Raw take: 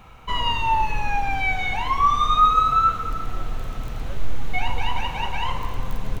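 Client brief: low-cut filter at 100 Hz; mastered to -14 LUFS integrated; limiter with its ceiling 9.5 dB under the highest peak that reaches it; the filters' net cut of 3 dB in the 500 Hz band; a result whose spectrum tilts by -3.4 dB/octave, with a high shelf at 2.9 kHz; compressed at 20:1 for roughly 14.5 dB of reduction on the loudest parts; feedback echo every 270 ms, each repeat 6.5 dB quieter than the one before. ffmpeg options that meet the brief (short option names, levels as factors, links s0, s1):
-af "highpass=100,equalizer=f=500:t=o:g=-4,highshelf=f=2900:g=6,acompressor=threshold=0.0447:ratio=20,alimiter=level_in=1.5:limit=0.0631:level=0:latency=1,volume=0.668,aecho=1:1:270|540|810|1080|1350|1620:0.473|0.222|0.105|0.0491|0.0231|0.0109,volume=9.44"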